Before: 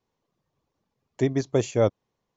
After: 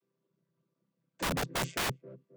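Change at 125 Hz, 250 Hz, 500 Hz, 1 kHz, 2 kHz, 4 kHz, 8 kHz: -11.0 dB, -12.5 dB, -16.0 dB, +0.5 dB, +4.5 dB, +5.5 dB, n/a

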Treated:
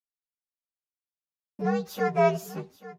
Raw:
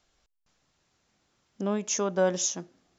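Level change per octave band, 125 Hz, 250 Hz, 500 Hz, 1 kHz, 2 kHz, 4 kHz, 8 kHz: +5.0 dB, +1.0 dB, +2.0 dB, +7.5 dB, +3.5 dB, -8.5 dB, n/a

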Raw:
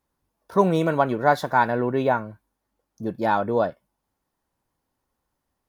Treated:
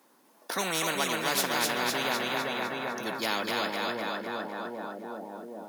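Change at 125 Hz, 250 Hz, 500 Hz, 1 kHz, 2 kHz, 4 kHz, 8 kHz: -14.5 dB, -9.0 dB, -9.5 dB, -8.0 dB, -0.5 dB, +12.0 dB, n/a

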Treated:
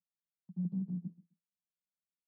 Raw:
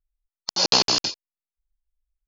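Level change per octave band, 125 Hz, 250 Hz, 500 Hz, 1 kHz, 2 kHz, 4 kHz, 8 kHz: +2.0 dB, -2.0 dB, under -35 dB, under -40 dB, under -40 dB, under -40 dB, n/a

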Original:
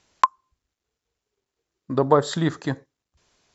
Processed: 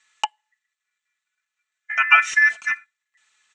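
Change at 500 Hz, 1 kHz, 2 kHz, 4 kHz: under -20 dB, -1.5 dB, +21.0 dB, +6.0 dB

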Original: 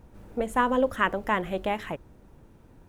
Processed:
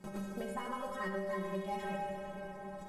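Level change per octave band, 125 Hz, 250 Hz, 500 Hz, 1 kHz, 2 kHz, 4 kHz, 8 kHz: -5.0, -9.5, -10.5, -12.0, -13.5, -12.0, -7.0 dB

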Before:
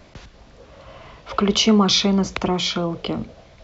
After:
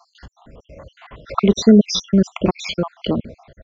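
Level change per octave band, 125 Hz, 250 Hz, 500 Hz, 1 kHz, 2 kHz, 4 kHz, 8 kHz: +3.0 dB, +4.5 dB, +3.5 dB, -2.5 dB, -3.5 dB, -5.5 dB, n/a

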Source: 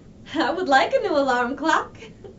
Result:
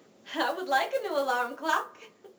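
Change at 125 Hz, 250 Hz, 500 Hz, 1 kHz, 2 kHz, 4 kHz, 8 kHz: under -20 dB, -13.0 dB, -8.5 dB, -7.5 dB, -7.5 dB, -6.5 dB, n/a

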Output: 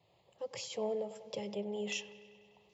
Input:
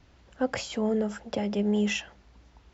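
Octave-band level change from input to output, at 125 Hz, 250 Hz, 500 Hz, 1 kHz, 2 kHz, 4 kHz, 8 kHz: -16.0 dB, -17.0 dB, -7.5 dB, -10.5 dB, -10.5 dB, -6.5 dB, n/a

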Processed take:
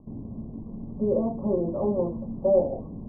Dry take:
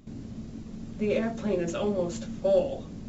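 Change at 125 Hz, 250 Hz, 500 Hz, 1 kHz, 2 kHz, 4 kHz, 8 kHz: +2.5 dB, +2.5 dB, +2.5 dB, +2.0 dB, under -40 dB, under -40 dB, n/a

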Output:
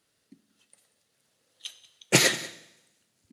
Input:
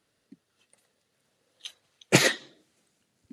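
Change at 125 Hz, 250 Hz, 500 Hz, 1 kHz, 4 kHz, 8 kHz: -2.0, -2.0, -1.5, -1.5, +2.0, +4.0 dB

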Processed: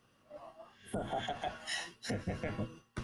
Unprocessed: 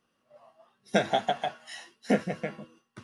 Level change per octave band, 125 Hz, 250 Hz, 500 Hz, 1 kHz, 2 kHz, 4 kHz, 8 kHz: -2.5, -10.0, -11.0, -10.0, -7.0, -5.5, -1.5 dB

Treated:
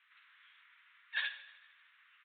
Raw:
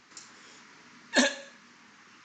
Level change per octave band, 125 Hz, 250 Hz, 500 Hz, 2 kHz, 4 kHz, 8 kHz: n/a, under -40 dB, under -35 dB, -8.0 dB, -11.0 dB, under -40 dB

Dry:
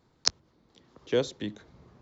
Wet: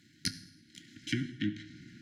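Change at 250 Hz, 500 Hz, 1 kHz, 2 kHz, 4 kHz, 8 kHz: +1.0 dB, -20.5 dB, under -10 dB, 0.0 dB, -7.5 dB, n/a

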